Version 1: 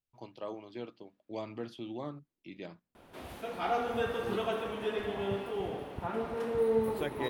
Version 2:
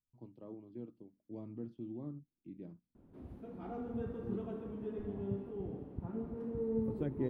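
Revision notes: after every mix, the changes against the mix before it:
second voice +6.5 dB; master: add EQ curve 270 Hz 0 dB, 670 Hz -17 dB, 1000 Hz -18 dB, 3300 Hz -29 dB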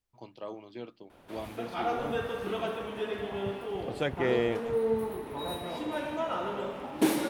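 second voice: entry -3.00 s; background: entry -1.85 s; master: remove EQ curve 270 Hz 0 dB, 670 Hz -17 dB, 1000 Hz -18 dB, 3300 Hz -29 dB

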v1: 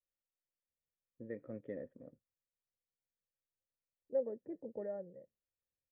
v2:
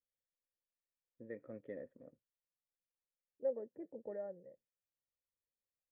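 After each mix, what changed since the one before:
second voice: entry -0.70 s; master: add low shelf 340 Hz -7 dB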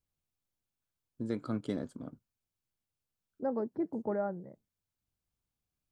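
first voice: add notch 1900 Hz, Q 8.8; master: remove vocal tract filter e

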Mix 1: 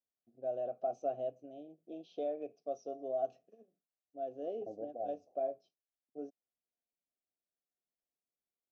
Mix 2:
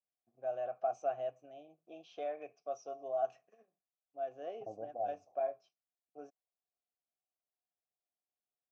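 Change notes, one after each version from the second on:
first voice: add tilt +3 dB/oct; master: add graphic EQ 125/250/500/1000/2000/4000 Hz +7/-6/-4/+11/+11/-9 dB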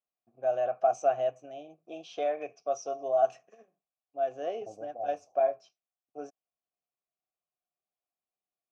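first voice +9.0 dB; master: remove air absorption 91 m

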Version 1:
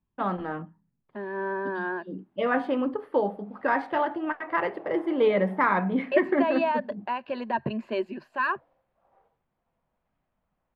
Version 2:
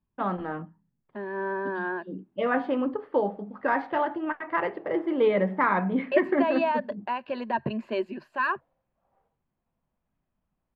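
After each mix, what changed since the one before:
first voice: add air absorption 110 m; background -7.0 dB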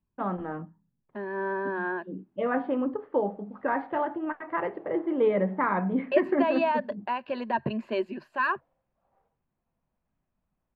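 first voice: add tape spacing loss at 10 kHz 28 dB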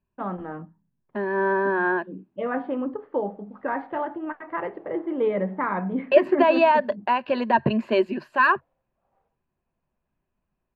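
second voice +8.0 dB

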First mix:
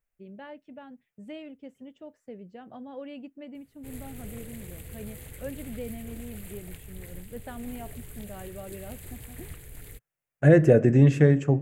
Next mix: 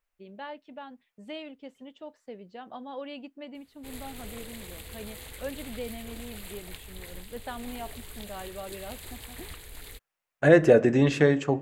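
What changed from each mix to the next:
master: add graphic EQ 125/1000/4000 Hz -10/+8/+12 dB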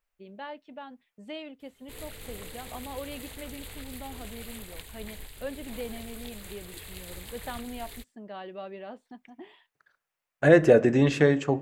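background: entry -1.95 s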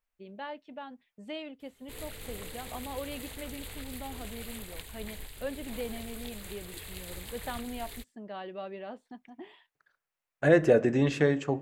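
second voice -4.0 dB

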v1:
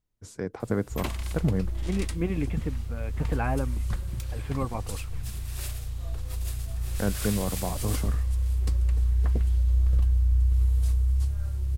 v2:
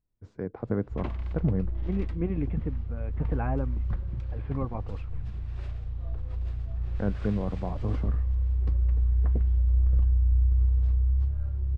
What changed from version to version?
master: add tape spacing loss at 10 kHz 44 dB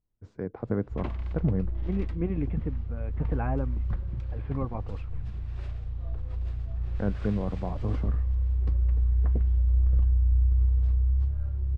none

